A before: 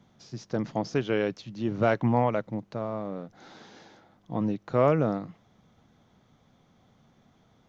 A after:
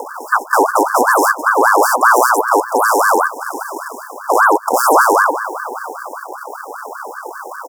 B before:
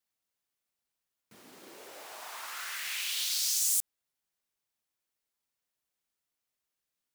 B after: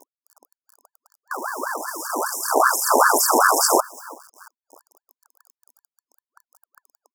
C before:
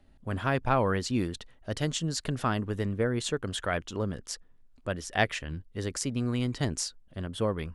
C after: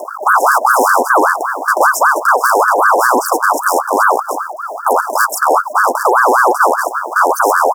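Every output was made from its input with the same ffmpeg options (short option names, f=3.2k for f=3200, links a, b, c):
-filter_complex "[0:a]acompressor=mode=upward:threshold=-50dB:ratio=2.5,aemphasis=mode=reproduction:type=75kf,acrusher=samples=17:mix=1:aa=0.000001:lfo=1:lforange=27.2:lforate=2.4,asplit=2[a][b];[b]adelay=338,lowpass=f=3.1k:p=1,volume=-23dB,asplit=2[c][d];[d]adelay=338,lowpass=f=3.1k:p=1,volume=0.47,asplit=2[e][f];[f]adelay=338,lowpass=f=3.1k:p=1,volume=0.47[g];[a][c][e][g]amix=inputs=4:normalize=0,aresample=32000,aresample=44100,asoftclip=type=tanh:threshold=-26.5dB,acrusher=bits=10:mix=0:aa=0.000001,acompressor=threshold=-36dB:ratio=2,afftfilt=real='re*(1-between(b*sr/4096,370,5800))':imag='im*(1-between(b*sr/4096,370,5800))':win_size=4096:overlap=0.75,alimiter=level_in=32.5dB:limit=-1dB:release=50:level=0:latency=1,aeval=exprs='val(0)*sin(2*PI*1000*n/s+1000*0.4/5.1*sin(2*PI*5.1*n/s))':c=same"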